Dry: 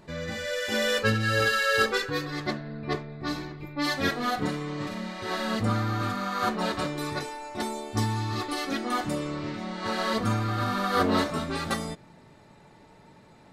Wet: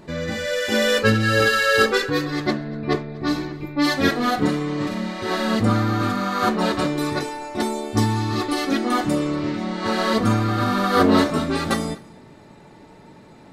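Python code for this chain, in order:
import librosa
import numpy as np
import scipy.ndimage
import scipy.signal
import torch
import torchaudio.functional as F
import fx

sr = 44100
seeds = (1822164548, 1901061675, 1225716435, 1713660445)

y = fx.peak_eq(x, sr, hz=300.0, db=5.0, octaves=1.3)
y = y + 10.0 ** (-24.0 / 20.0) * np.pad(y, (int(241 * sr / 1000.0), 0))[:len(y)]
y = F.gain(torch.from_numpy(y), 5.5).numpy()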